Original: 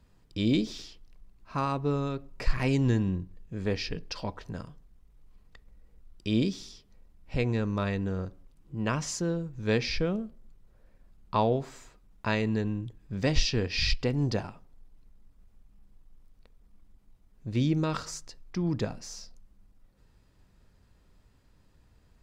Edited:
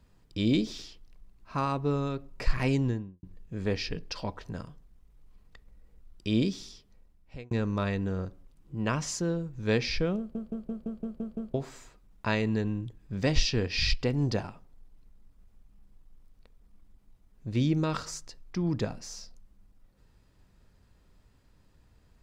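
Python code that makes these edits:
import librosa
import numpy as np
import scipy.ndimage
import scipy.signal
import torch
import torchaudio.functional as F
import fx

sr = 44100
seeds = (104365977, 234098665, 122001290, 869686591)

y = fx.studio_fade_out(x, sr, start_s=2.65, length_s=0.58)
y = fx.edit(y, sr, fx.fade_out_span(start_s=6.56, length_s=0.95, curve='qsin'),
    fx.stutter_over(start_s=10.18, slice_s=0.17, count=8), tone=tone)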